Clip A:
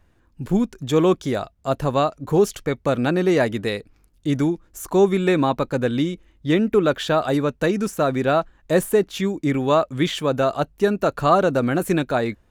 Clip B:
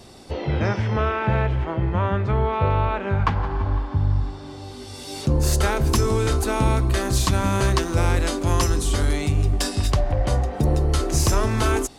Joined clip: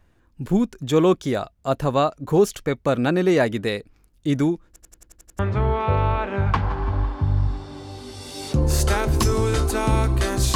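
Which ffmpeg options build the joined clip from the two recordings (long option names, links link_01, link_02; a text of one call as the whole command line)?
ffmpeg -i cue0.wav -i cue1.wav -filter_complex "[0:a]apad=whole_dur=10.55,atrim=end=10.55,asplit=8[link_01][link_02][link_03][link_04][link_05][link_06][link_07][link_08];[link_01]atrim=end=4.762[link_09];[link_02]atrim=start=4.668:end=4.762[link_10];[link_03]atrim=start=4.668:end=4.762[link_11];[link_04]atrim=start=4.668:end=4.762[link_12];[link_05]atrim=start=4.668:end=4.762[link_13];[link_06]atrim=start=4.668:end=4.762[link_14];[link_07]atrim=start=4.668:end=4.762[link_15];[link_08]atrim=start=4.668:end=4.762[link_16];[1:a]atrim=start=2.118:end=7.28[link_17];[link_09][link_10]acrossfade=duration=0.004:curve1=hsin:curve2=hsin[link_18];[link_18][link_11]acrossfade=duration=0.004:curve1=hsin:curve2=hsin[link_19];[link_19][link_12]acrossfade=duration=0.004:curve1=hsin:curve2=hsin[link_20];[link_20][link_13]acrossfade=duration=0.004:curve1=hsin:curve2=hsin[link_21];[link_21][link_14]acrossfade=duration=0.004:curve1=hsin:curve2=hsin[link_22];[link_22][link_15]acrossfade=duration=0.004:curve1=hsin:curve2=hsin[link_23];[link_23][link_16]acrossfade=duration=0.004:curve1=hsin:curve2=hsin[link_24];[link_24][link_17]acrossfade=duration=0.004:curve1=hsin:curve2=hsin" out.wav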